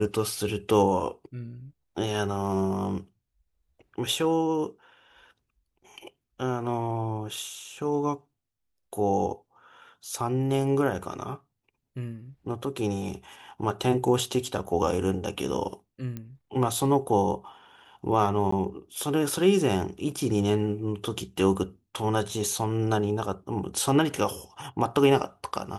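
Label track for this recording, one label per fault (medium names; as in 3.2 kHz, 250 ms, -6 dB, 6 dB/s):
16.170000	16.170000	pop -23 dBFS
18.510000	18.520000	dropout 14 ms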